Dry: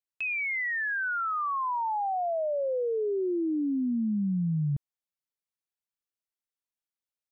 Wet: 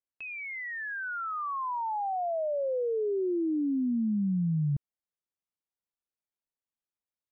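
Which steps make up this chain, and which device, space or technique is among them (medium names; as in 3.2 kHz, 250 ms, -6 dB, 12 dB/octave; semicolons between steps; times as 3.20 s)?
through cloth (treble shelf 2.1 kHz -15 dB)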